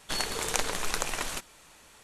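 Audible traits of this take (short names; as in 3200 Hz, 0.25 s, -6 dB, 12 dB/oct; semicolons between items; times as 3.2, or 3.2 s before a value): noise floor -56 dBFS; spectral tilt -2.5 dB/oct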